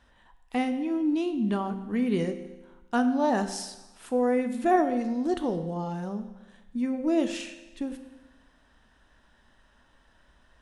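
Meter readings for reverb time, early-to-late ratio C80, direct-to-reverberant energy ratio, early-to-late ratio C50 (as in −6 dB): 1.1 s, 12.5 dB, 8.0 dB, 10.5 dB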